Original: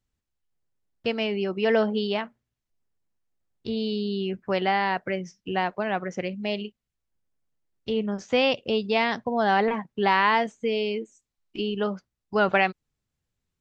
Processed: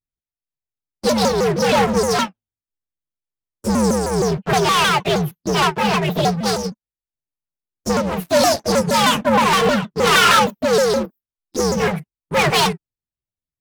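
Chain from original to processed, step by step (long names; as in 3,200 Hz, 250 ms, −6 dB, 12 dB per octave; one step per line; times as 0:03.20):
partials spread apart or drawn together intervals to 126%
leveller curve on the samples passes 5
0:09.87–0:10.40: flutter between parallel walls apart 6 metres, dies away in 0.48 s
on a send at −9 dB: convolution reverb, pre-delay 3 ms
on the sum: pitch modulation by a square or saw wave saw down 6.4 Hz, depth 250 cents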